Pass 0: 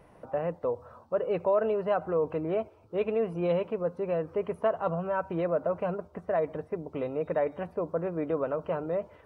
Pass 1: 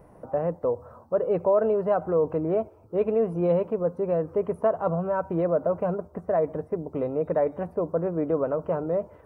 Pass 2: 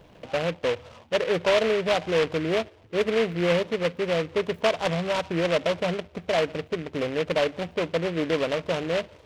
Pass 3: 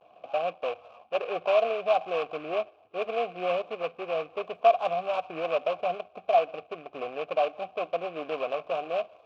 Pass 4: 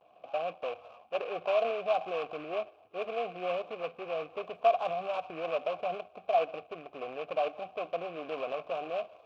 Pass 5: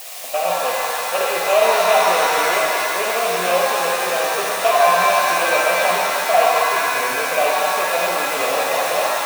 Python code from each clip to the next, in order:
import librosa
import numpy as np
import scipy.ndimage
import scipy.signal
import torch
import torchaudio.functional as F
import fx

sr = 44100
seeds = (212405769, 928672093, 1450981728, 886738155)

y1 = fx.peak_eq(x, sr, hz=3200.0, db=-14.5, octaves=1.9)
y1 = y1 * 10.0 ** (5.5 / 20.0)
y2 = fx.noise_mod_delay(y1, sr, seeds[0], noise_hz=1900.0, depth_ms=0.11)
y3 = fx.vibrato(y2, sr, rate_hz=0.68, depth_cents=70.0)
y3 = fx.vowel_filter(y3, sr, vowel='a')
y3 = y3 * 10.0 ** (7.0 / 20.0)
y4 = fx.transient(y3, sr, attack_db=1, sustain_db=5)
y4 = y4 * 10.0 ** (-5.5 / 20.0)
y5 = y4 + 0.5 * 10.0 ** (-28.5 / 20.0) * np.diff(np.sign(y4), prepend=np.sign(y4[:1]))
y5 = fx.dynamic_eq(y5, sr, hz=1600.0, q=0.77, threshold_db=-45.0, ratio=4.0, max_db=6)
y5 = fx.rev_shimmer(y5, sr, seeds[1], rt60_s=2.5, semitones=7, shimmer_db=-2, drr_db=-2.5)
y5 = y5 * 10.0 ** (7.5 / 20.0)